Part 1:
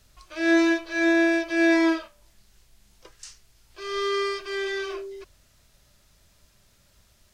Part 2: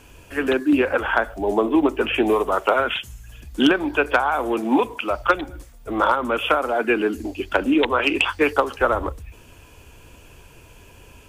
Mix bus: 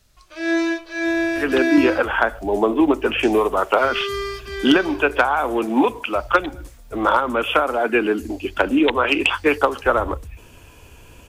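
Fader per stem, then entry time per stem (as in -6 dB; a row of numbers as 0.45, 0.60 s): -0.5, +1.5 dB; 0.00, 1.05 s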